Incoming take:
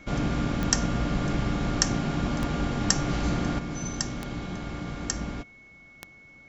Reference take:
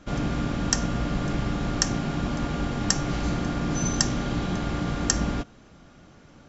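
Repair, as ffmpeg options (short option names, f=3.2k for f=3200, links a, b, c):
-af "adeclick=t=4,bandreject=f=2.2k:w=30,asetnsamples=n=441:p=0,asendcmd='3.59 volume volume 7dB',volume=0dB"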